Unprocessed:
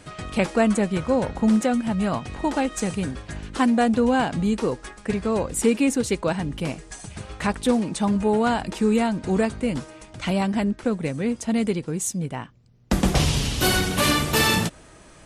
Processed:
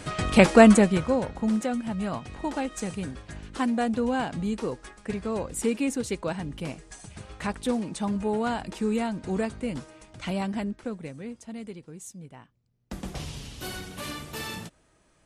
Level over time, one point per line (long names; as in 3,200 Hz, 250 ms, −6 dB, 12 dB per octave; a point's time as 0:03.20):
0:00.68 +6 dB
0:01.30 −6.5 dB
0:10.51 −6.5 dB
0:11.53 −16 dB